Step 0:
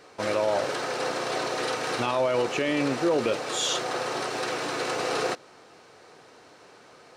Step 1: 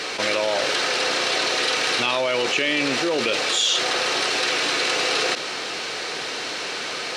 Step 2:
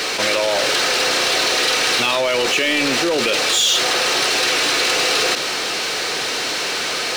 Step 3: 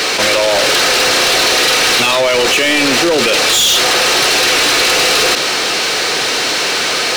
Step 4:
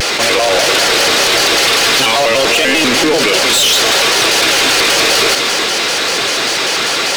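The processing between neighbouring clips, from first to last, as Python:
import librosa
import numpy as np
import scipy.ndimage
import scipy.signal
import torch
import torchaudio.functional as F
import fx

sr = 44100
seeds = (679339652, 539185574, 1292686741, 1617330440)

y1 = fx.weighting(x, sr, curve='D')
y1 = fx.env_flatten(y1, sr, amount_pct=70)
y1 = y1 * 10.0 ** (-4.0 / 20.0)
y2 = fx.high_shelf(y1, sr, hz=7100.0, db=7.5)
y2 = fx.power_curve(y2, sr, exponent=0.7)
y3 = np.clip(10.0 ** (15.5 / 20.0) * y2, -1.0, 1.0) / 10.0 ** (15.5 / 20.0)
y3 = y3 * 10.0 ** (7.0 / 20.0)
y4 = y3 + 10.0 ** (-9.5 / 20.0) * np.pad(y3, (int(301 * sr / 1000.0), 0))[:len(y3)]
y4 = fx.vibrato_shape(y4, sr, shape='square', rate_hz=5.1, depth_cents=160.0)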